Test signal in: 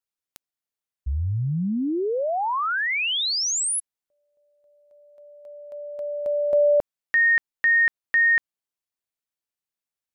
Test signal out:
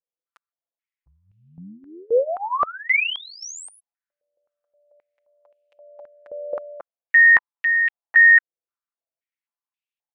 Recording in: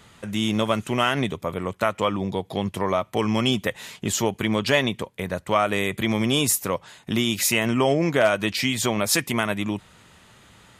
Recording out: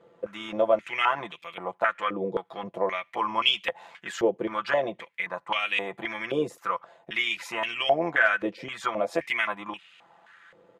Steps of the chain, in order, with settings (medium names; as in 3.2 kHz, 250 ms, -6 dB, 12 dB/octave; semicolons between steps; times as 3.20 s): comb 5.9 ms, depth 77%; AM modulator 88 Hz, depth 20%; step-sequenced band-pass 3.8 Hz 480–2700 Hz; trim +7 dB